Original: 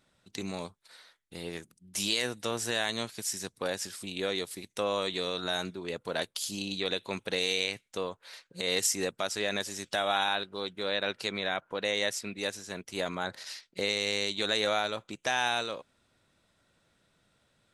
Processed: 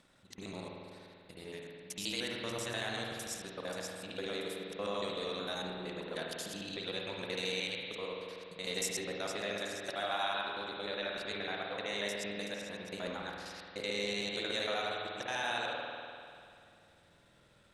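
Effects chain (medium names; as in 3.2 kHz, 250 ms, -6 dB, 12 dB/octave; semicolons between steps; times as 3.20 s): time reversed locally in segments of 76 ms; upward compressor, threshold -49 dBFS; spring tank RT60 2.4 s, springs 49 ms, chirp 25 ms, DRR -1 dB; trim -8.5 dB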